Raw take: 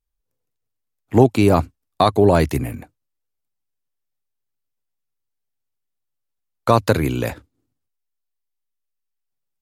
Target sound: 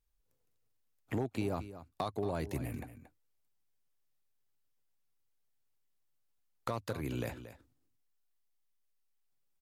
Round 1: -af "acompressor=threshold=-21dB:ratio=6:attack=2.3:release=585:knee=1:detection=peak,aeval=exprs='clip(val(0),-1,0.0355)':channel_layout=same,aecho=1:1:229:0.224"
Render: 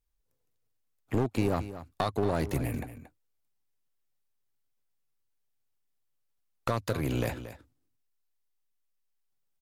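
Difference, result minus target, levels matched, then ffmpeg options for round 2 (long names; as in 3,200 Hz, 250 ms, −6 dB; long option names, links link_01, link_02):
downward compressor: peak gain reduction −8.5 dB
-af "acompressor=threshold=-31dB:ratio=6:attack=2.3:release=585:knee=1:detection=peak,aeval=exprs='clip(val(0),-1,0.0355)':channel_layout=same,aecho=1:1:229:0.224"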